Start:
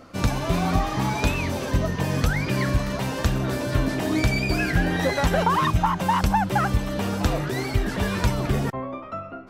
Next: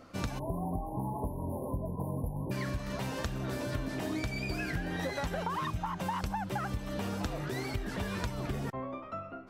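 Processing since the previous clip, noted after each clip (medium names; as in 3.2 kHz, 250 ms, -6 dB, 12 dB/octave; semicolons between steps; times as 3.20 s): spectral selection erased 0.39–2.51 s, 1.1–9.4 kHz; compression, threshold -24 dBFS, peak gain reduction 9 dB; trim -7 dB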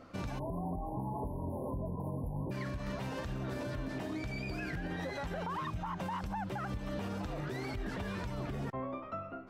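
peak limiter -29.5 dBFS, peak gain reduction 9 dB; treble shelf 5.4 kHz -9.5 dB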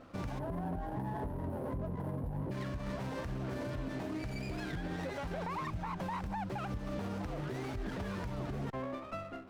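sliding maximum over 9 samples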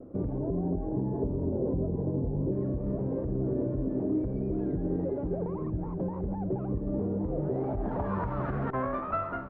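vibrato 0.44 Hz 18 cents; low-pass sweep 410 Hz -> 1.4 kHz, 7.26–8.44 s; delay 1109 ms -11.5 dB; trim +6 dB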